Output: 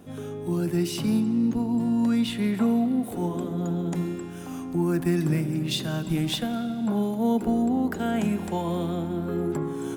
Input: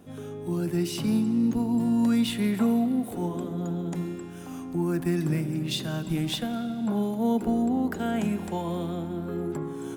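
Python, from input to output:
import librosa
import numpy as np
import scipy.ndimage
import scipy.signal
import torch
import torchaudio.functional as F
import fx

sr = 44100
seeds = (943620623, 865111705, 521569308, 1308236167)

p1 = fx.high_shelf(x, sr, hz=8000.0, db=-7.0, at=(1.2, 3.03))
p2 = fx.rider(p1, sr, range_db=4, speed_s=2.0)
p3 = p1 + (p2 * 10.0 ** (2.5 / 20.0))
y = p3 * 10.0 ** (-6.0 / 20.0)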